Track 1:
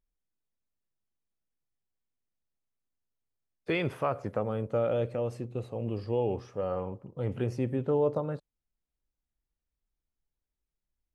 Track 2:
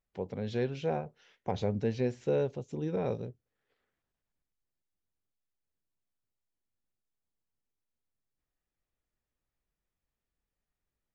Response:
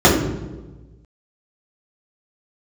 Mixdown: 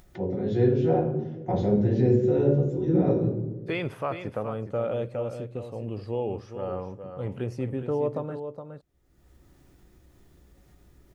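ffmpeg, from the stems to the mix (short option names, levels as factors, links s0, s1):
-filter_complex "[0:a]volume=0.944,asplit=2[s0][s1];[s1]volume=0.355[s2];[1:a]volume=0.316,asplit=2[s3][s4];[s4]volume=0.188[s5];[2:a]atrim=start_sample=2205[s6];[s5][s6]afir=irnorm=-1:irlink=0[s7];[s2]aecho=0:1:417:1[s8];[s0][s3][s7][s8]amix=inputs=4:normalize=0,acompressor=mode=upward:threshold=0.0158:ratio=2.5"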